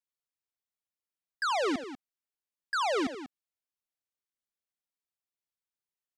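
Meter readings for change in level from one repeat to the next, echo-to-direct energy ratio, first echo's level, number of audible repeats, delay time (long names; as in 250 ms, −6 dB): repeats not evenly spaced, −11.5 dB, −17.5 dB, 2, 79 ms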